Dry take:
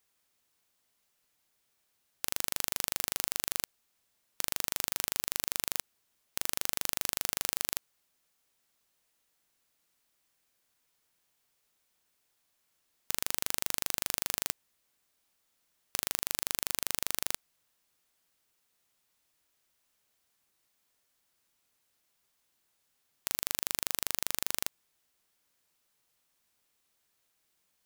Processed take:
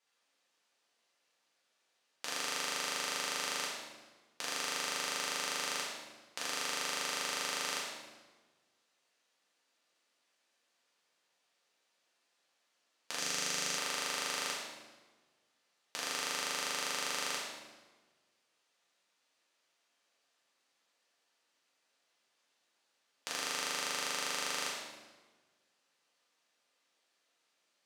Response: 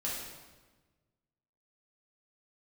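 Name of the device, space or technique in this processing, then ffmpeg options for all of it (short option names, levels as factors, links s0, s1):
supermarket ceiling speaker: -filter_complex "[0:a]highpass=340,lowpass=5900[s0];[1:a]atrim=start_sample=2205[s1];[s0][s1]afir=irnorm=-1:irlink=0,asettb=1/sr,asplit=3[s2][s3][s4];[s2]atrim=end=13.194[s5];[s3]atrim=start=13.19:end=13.78,asetpts=PTS-STARTPTS,afade=t=in:d=0.004:c=qsin,afade=t=out:st=0.586:d=0.004:c=qsin,equalizer=f=160:t=o:w=0.67:g=9,equalizer=f=1000:t=o:w=0.67:g=-5,equalizer=f=6300:t=o:w=0.67:g=5[s6];[s4]atrim=start=13.776[s7];[s5][s6]acrossfade=d=0.004:c1=hsin:c2=qsin[s8];[s8][s7]acrossfade=d=0.004:c1=qsin:c2=hsin"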